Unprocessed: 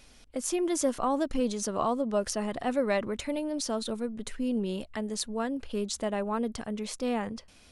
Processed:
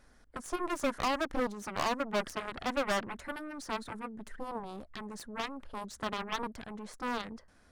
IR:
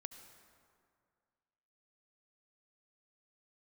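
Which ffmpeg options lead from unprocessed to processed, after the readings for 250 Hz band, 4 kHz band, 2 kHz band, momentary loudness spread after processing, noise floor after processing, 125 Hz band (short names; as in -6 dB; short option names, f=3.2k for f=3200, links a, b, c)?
-9.0 dB, -2.5 dB, +2.5 dB, 12 LU, -62 dBFS, -7.0 dB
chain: -af "highshelf=f=2.1k:t=q:w=3:g=-7,aeval=exprs='0.2*(cos(1*acos(clip(val(0)/0.2,-1,1)))-cos(1*PI/2))+0.00708*(cos(5*acos(clip(val(0)/0.2,-1,1)))-cos(5*PI/2))+0.0158*(cos(6*acos(clip(val(0)/0.2,-1,1)))-cos(6*PI/2))+0.0501*(cos(7*acos(clip(val(0)/0.2,-1,1)))-cos(7*PI/2))':c=same,volume=23.5dB,asoftclip=hard,volume=-23.5dB"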